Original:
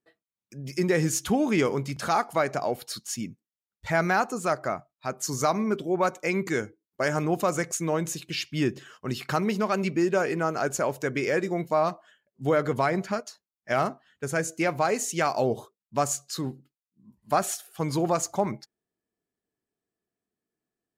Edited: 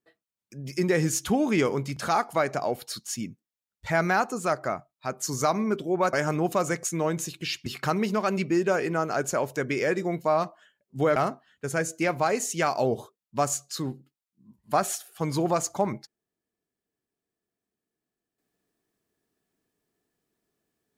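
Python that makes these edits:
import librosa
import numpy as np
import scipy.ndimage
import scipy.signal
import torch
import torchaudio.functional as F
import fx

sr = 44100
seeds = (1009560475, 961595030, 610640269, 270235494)

y = fx.edit(x, sr, fx.cut(start_s=6.13, length_s=0.88),
    fx.cut(start_s=8.54, length_s=0.58),
    fx.cut(start_s=12.62, length_s=1.13), tone=tone)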